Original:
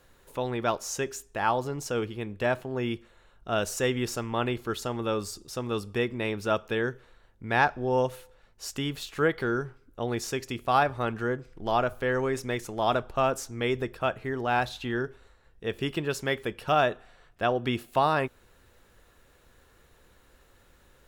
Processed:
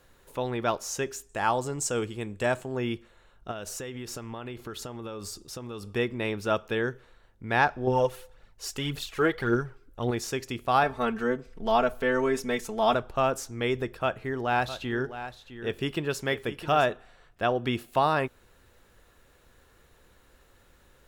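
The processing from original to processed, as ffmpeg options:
-filter_complex "[0:a]asettb=1/sr,asplit=3[a][b][c];[a]atrim=end=1.294[d];[b]atrim=start=1.29:end=2.77,asetpts=PTS-STARTPTS,afade=t=in:d=0.004:c=qsin,afade=t=out:st=1.476:d=0.004:c=qsin,equalizer=f=7.8k:w=2.3:g=15[e];[c]atrim=start=2.766[f];[d][e]acrossfade=d=0.004:c1=hsin:c2=qsin[g];[g][f]acrossfade=d=0.004:c1=qsin:c2=hsin,asettb=1/sr,asplit=3[h][i][j];[h]atrim=end=3.514[k];[i]atrim=start=3.51:end=5.88,asetpts=PTS-STARTPTS,afade=t=in:d=0.004:c=qsin,afade=t=out:st=2.366:d=0.004:c=qsin,acompressor=threshold=-33dB:ratio=12:attack=3.2:release=140:knee=1:detection=peak[l];[j]atrim=start=5.876[m];[k][l]acrossfade=d=0.004:c1=hsin:c2=qsin[n];[n][m]acrossfade=d=0.004:c1=qsin:c2=hsin,asettb=1/sr,asplit=3[o][p][q];[o]atrim=end=7.874[r];[p]atrim=start=7.87:end=10.11,asetpts=PTS-STARTPTS,afade=t=in:d=0.004:c=qsin,afade=t=out:st=2.236:d=0.004:c=qsin,aphaser=in_gain=1:out_gain=1:delay=3:decay=0.5:speed=1.8:type=triangular[s];[q]atrim=start=10.106[t];[r][s]acrossfade=d=0.004:c1=hsin:c2=qsin[u];[u][t]acrossfade=d=0.004:c1=qsin:c2=hsin,asettb=1/sr,asplit=3[v][w][x];[v]atrim=end=10.834[y];[w]atrim=start=10.83:end=12.94,asetpts=PTS-STARTPTS,afade=t=in:d=0.004:c=qsin,afade=t=out:st=2.106:d=0.004:c=qsin,aecho=1:1:4.5:0.77,atrim=end_sample=93051[z];[x]atrim=start=12.936[aa];[y][z]acrossfade=d=0.004:c1=hsin:c2=qsin[ab];[ab][aa]acrossfade=d=0.004:c1=qsin:c2=hsin,asettb=1/sr,asplit=3[ac][ad][ae];[ac]atrim=end=13.864[af];[ad]atrim=start=13.86:end=16.92,asetpts=PTS-STARTPTS,afade=t=in:d=0.004:c=qsin,afade=t=out:st=3.056:d=0.004:c=qsin,aecho=1:1:660:0.251,atrim=end_sample=134946[ag];[ae]atrim=start=16.916[ah];[af][ag]acrossfade=d=0.004:c1=hsin:c2=qsin[ai];[ai][ah]acrossfade=d=0.004:c1=qsin:c2=hsin"

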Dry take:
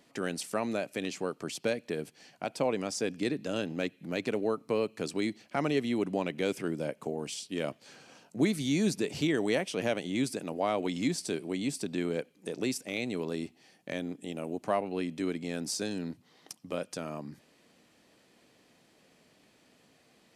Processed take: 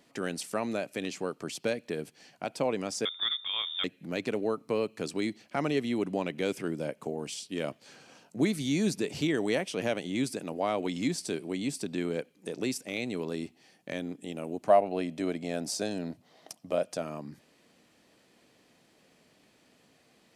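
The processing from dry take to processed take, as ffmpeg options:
-filter_complex "[0:a]asettb=1/sr,asplit=3[a][b][c];[a]atrim=end=3.054[d];[b]atrim=start=3.05:end=3.84,asetpts=PTS-STARTPTS,afade=t=in:d=0.004:c=qsin,afade=t=out:st=0.786:d=0.004:c=qsin,lowpass=f=3.2k:t=q:w=0.5098,lowpass=f=3.2k:t=q:w=0.6013,lowpass=f=3.2k:t=q:w=0.9,lowpass=f=3.2k:t=q:w=2.563,afreqshift=-3800[e];[c]atrim=start=3.836[f];[d][e]acrossfade=d=0.004:c1=hsin:c2=qsin[g];[g][f]acrossfade=d=0.004:c1=qsin:c2=hsin,asettb=1/sr,asplit=3[h][i][j];[h]atrim=end=14.694[k];[i]atrim=start=14.69:end=17.02,asetpts=PTS-STARTPTS,afade=t=in:d=0.004:c=qsin,afade=t=out:st=2.326:d=0.004:c=qsin,equalizer=f=650:t=o:w=0.45:g=12[l];[j]atrim=start=17.016[m];[k][l]acrossfade=d=0.004:c1=hsin:c2=qsin[n];[n][m]acrossfade=d=0.004:c1=qsin:c2=hsin"

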